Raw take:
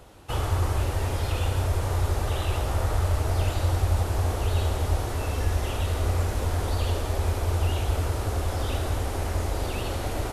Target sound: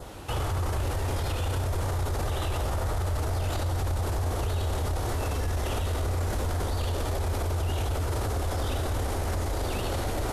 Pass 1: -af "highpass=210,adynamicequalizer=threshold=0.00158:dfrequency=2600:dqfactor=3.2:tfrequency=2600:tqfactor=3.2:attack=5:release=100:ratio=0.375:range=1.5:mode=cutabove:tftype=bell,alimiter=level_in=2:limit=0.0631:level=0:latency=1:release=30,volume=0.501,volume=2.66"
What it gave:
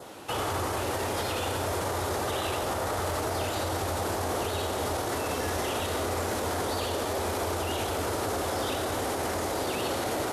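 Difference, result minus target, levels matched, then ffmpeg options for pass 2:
250 Hz band +3.0 dB
-af "adynamicequalizer=threshold=0.00158:dfrequency=2600:dqfactor=3.2:tfrequency=2600:tqfactor=3.2:attack=5:release=100:ratio=0.375:range=1.5:mode=cutabove:tftype=bell,alimiter=level_in=2:limit=0.0631:level=0:latency=1:release=30,volume=0.501,volume=2.66"

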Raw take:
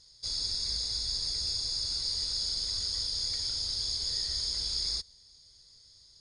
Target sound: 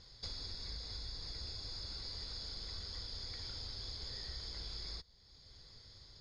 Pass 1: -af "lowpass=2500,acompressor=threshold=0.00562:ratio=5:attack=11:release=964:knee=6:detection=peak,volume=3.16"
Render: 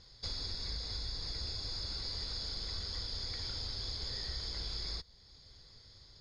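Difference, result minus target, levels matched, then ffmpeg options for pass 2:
compression: peak gain reduction -5 dB
-af "lowpass=2500,acompressor=threshold=0.00266:ratio=5:attack=11:release=964:knee=6:detection=peak,volume=3.16"

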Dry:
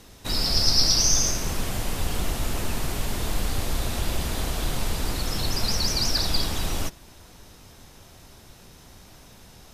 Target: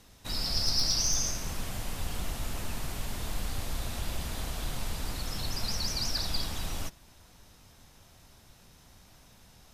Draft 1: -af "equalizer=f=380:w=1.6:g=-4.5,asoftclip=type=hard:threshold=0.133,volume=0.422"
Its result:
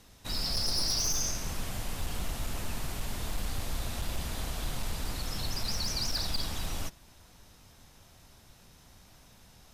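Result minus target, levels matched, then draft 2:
hard clipper: distortion +14 dB
-af "equalizer=f=380:w=1.6:g=-4.5,asoftclip=type=hard:threshold=0.282,volume=0.422"

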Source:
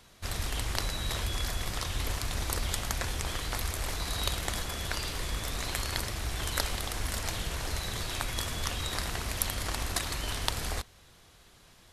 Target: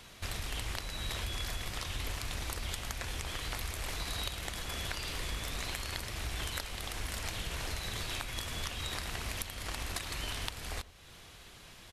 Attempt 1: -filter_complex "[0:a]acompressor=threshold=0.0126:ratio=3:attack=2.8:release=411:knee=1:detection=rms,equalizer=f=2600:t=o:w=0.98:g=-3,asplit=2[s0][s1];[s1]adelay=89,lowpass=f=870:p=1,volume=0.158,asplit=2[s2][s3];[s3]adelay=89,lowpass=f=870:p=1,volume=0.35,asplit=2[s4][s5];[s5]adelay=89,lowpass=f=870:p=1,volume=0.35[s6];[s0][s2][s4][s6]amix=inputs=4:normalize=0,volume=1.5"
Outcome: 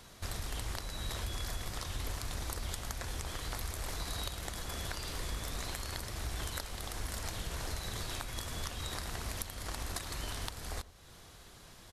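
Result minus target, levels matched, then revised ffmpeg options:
2 kHz band -2.5 dB
-filter_complex "[0:a]acompressor=threshold=0.0126:ratio=3:attack=2.8:release=411:knee=1:detection=rms,equalizer=f=2600:t=o:w=0.98:g=4.5,asplit=2[s0][s1];[s1]adelay=89,lowpass=f=870:p=1,volume=0.158,asplit=2[s2][s3];[s3]adelay=89,lowpass=f=870:p=1,volume=0.35,asplit=2[s4][s5];[s5]adelay=89,lowpass=f=870:p=1,volume=0.35[s6];[s0][s2][s4][s6]amix=inputs=4:normalize=0,volume=1.5"

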